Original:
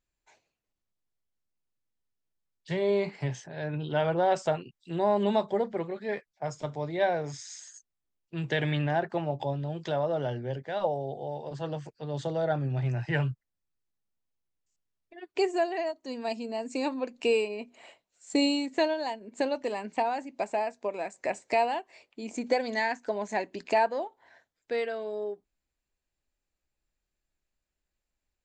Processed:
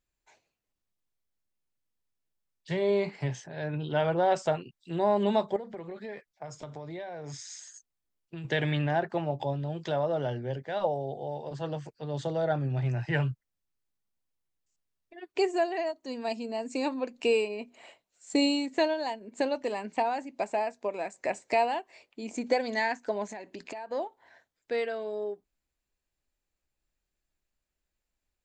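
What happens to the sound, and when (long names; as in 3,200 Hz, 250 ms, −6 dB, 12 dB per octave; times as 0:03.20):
0:05.56–0:08.45: downward compressor 16 to 1, threshold −35 dBFS
0:23.31–0:23.91: downward compressor 16 to 1, threshold −36 dBFS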